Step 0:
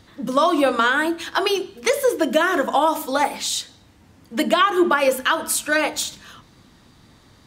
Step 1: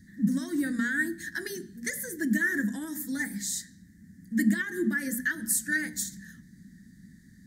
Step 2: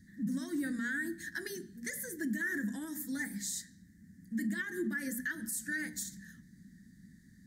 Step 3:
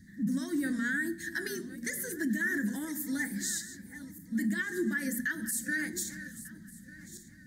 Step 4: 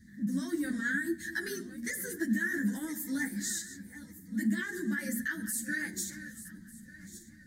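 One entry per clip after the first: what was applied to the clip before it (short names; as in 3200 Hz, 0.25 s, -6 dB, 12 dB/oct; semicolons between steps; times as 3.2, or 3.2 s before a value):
EQ curve 130 Hz 0 dB, 190 Hz +15 dB, 600 Hz -28 dB, 1200 Hz -29 dB, 1800 Hz +8 dB, 2600 Hz -28 dB, 4000 Hz -11 dB, 6700 Hz 0 dB, 12000 Hz +3 dB; gain -5.5 dB
limiter -22.5 dBFS, peak gain reduction 10.5 dB; gain -5 dB
regenerating reverse delay 0.598 s, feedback 44%, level -13.5 dB; gain +4 dB
ensemble effect; gain +2 dB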